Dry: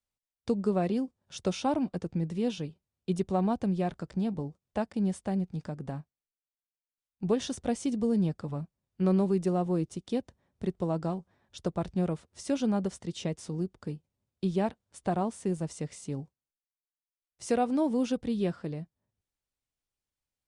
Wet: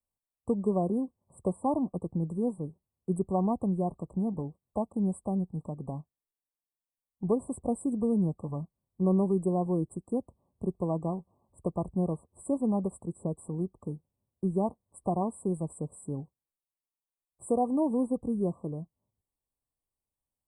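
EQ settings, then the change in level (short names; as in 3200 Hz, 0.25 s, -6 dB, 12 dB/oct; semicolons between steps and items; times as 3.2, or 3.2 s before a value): brick-wall FIR band-stop 1200–7600 Hz; 0.0 dB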